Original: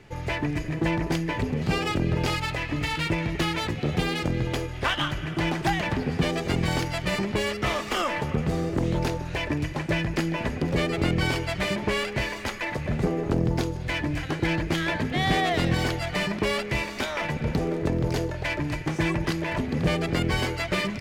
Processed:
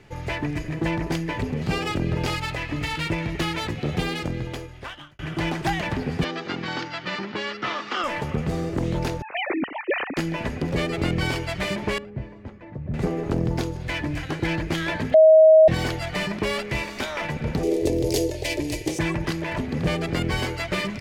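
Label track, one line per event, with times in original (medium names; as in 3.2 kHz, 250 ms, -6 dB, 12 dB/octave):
4.060000	5.190000	fade out
6.240000	8.040000	cabinet simulation 250–5200 Hz, peaks and dips at 430 Hz -5 dB, 630 Hz -7 dB, 1.4 kHz +5 dB, 2.3 kHz -3 dB
9.220000	10.170000	formants replaced by sine waves
11.980000	12.940000	band-pass filter 120 Hz, Q 0.71
15.140000	15.680000	bleep 633 Hz -8.5 dBFS
17.630000	18.990000	FFT filter 110 Hz 0 dB, 170 Hz -11 dB, 340 Hz +7 dB, 490 Hz +7 dB, 1.4 kHz -15 dB, 2 kHz -2 dB, 2.8 kHz +3 dB, 5.1 kHz +10 dB, 10 kHz +14 dB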